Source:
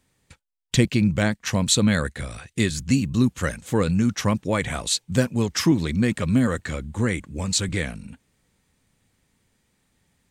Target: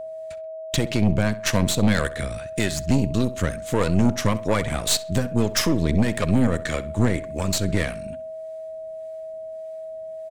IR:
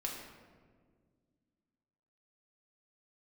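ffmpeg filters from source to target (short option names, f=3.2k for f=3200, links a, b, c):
-filter_complex "[0:a]alimiter=limit=-13.5dB:level=0:latency=1:release=193,acrossover=split=410[a][b];[a]aeval=exprs='val(0)*(1-0.5/2+0.5/2*cos(2*PI*1.7*n/s))':c=same[c];[b]aeval=exprs='val(0)*(1-0.5/2-0.5/2*cos(2*PI*1.7*n/s))':c=same[d];[c][d]amix=inputs=2:normalize=0,aeval=exprs='0.237*(cos(1*acos(clip(val(0)/0.237,-1,1)))-cos(1*PI/2))+0.0335*(cos(6*acos(clip(val(0)/0.237,-1,1)))-cos(6*PI/2))':c=same,aeval=exprs='val(0)+0.0178*sin(2*PI*640*n/s)':c=same,asplit=2[e][f];[f]adelay=65,lowpass=f=3.8k:p=1,volume=-16dB,asplit=2[g][h];[h]adelay=65,lowpass=f=3.8k:p=1,volume=0.38,asplit=2[i][j];[j]adelay=65,lowpass=f=3.8k:p=1,volume=0.38[k];[g][i][k]amix=inputs=3:normalize=0[l];[e][l]amix=inputs=2:normalize=0,volume=4dB"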